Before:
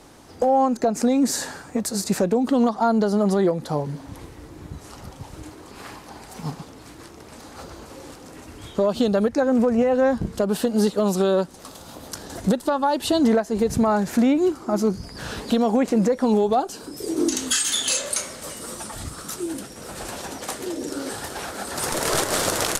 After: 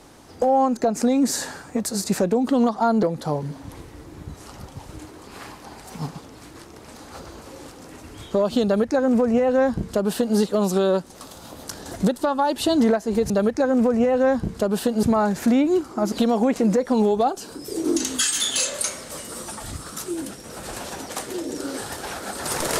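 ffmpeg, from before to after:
-filter_complex "[0:a]asplit=5[a][b][c][d][e];[a]atrim=end=3.032[f];[b]atrim=start=3.468:end=13.742[g];[c]atrim=start=9.078:end=10.812[h];[d]atrim=start=13.738:end=14.832[i];[e]atrim=start=15.438[j];[f][g]acrossfade=d=0.004:c1=hsin:c2=hsin[k];[k][h]acrossfade=d=0.004:c1=hsin:c2=hsin[l];[l][i]acrossfade=d=0.004:c1=hsin:c2=hsin[m];[m][j]acrossfade=d=0.004:c1=hsin:c2=hsin"

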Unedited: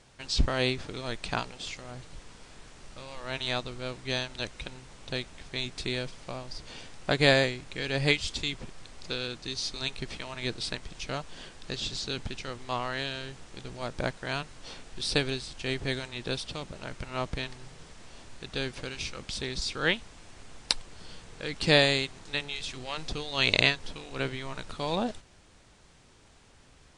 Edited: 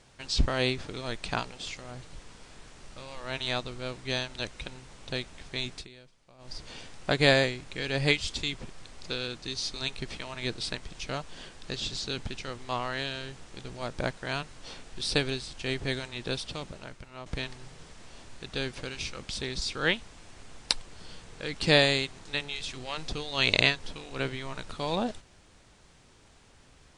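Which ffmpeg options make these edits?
-filter_complex "[0:a]asplit=4[a][b][c][d];[a]atrim=end=5.88,asetpts=PTS-STARTPTS,afade=t=out:st=5.74:d=0.14:silence=0.105925[e];[b]atrim=start=5.88:end=6.38,asetpts=PTS-STARTPTS,volume=-19.5dB[f];[c]atrim=start=6.38:end=17.26,asetpts=PTS-STARTPTS,afade=t=in:d=0.14:silence=0.105925,afade=t=out:st=10.31:d=0.57:c=qua:silence=0.266073[g];[d]atrim=start=17.26,asetpts=PTS-STARTPTS,afade=t=in:d=0.004:c=hsin:silence=0.266073[h];[e][f][g][h]concat=n=4:v=0:a=1"

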